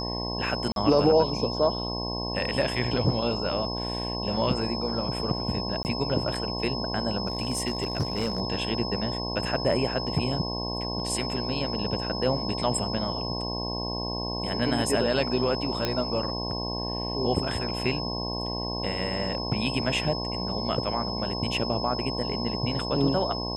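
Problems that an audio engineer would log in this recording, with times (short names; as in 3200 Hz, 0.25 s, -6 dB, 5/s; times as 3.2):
buzz 60 Hz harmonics 18 -33 dBFS
tone 5200 Hz -33 dBFS
0.72–0.76 gap 42 ms
5.83–5.85 gap 19 ms
7.26–8.41 clipped -21.5 dBFS
15.85 pop -11 dBFS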